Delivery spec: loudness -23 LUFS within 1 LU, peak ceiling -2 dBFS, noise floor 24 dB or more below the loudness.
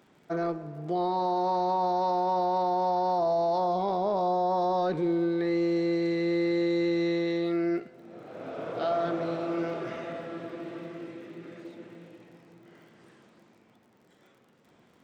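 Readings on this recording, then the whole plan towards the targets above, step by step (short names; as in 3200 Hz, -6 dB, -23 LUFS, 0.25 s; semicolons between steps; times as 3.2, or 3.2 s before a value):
ticks 45/s; loudness -28.5 LUFS; peak -20.0 dBFS; loudness target -23.0 LUFS
-> de-click; gain +5.5 dB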